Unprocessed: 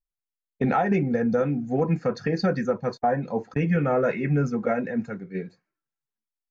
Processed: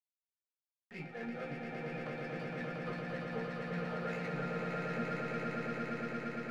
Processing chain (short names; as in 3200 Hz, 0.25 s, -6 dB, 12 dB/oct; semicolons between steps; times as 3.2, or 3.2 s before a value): median filter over 9 samples; Chebyshev band-pass 140–5400 Hz, order 4; bell 2600 Hz +14 dB 2.6 oct; auto swell 0.284 s; reverse; compressor, threshold -32 dBFS, peak gain reduction 15.5 dB; reverse; chorus 2.8 Hz, delay 17.5 ms, depth 5 ms; power-law curve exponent 1.4; resonator bank A#2 sus4, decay 0.22 s; swelling echo 0.115 s, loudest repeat 8, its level -5 dB; reverb, pre-delay 46 ms, DRR 14 dB; stuck buffer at 0.56, samples 1024, times 14; gain +8 dB